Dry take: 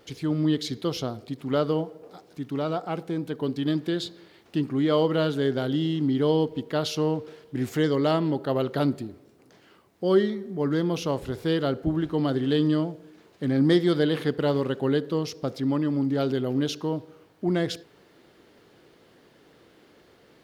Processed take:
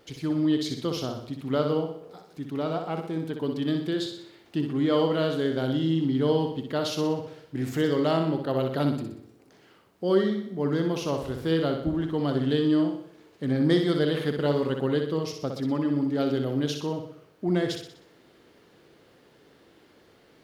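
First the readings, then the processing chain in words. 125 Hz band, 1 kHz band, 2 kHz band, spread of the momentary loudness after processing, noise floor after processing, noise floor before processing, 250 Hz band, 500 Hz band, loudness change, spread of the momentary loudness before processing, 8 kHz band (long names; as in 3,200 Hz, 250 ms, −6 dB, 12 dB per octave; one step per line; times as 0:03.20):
−1.0 dB, −1.0 dB, −1.0 dB, 10 LU, −58 dBFS, −58 dBFS, −0.5 dB, −1.0 dB, −1.0 dB, 10 LU, −1.0 dB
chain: flutter between parallel walls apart 10.6 metres, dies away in 0.6 s
level −2 dB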